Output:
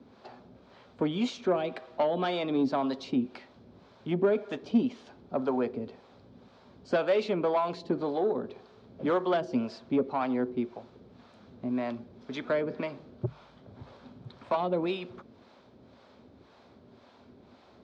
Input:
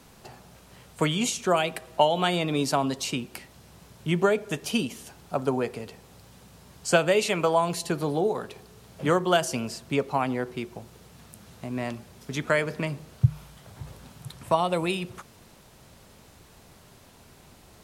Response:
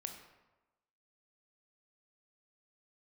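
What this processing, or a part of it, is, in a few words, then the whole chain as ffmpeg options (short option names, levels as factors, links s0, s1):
guitar amplifier with harmonic tremolo: -filter_complex "[0:a]acrossover=split=520[s0][s1];[s0]aeval=exprs='val(0)*(1-0.7/2+0.7/2*cos(2*PI*1.9*n/s))':c=same[s2];[s1]aeval=exprs='val(0)*(1-0.7/2-0.7/2*cos(2*PI*1.9*n/s))':c=same[s3];[s2][s3]amix=inputs=2:normalize=0,asoftclip=type=tanh:threshold=0.0794,highpass=95,equalizer=f=150:t=q:w=4:g=-8,equalizer=f=250:t=q:w=4:g=9,equalizer=f=380:t=q:w=4:g=4,equalizer=f=570:t=q:w=4:g=4,equalizer=f=1900:t=q:w=4:g=-5,equalizer=f=2800:t=q:w=4:g=-8,lowpass=f=4000:w=0.5412,lowpass=f=4000:w=1.3066"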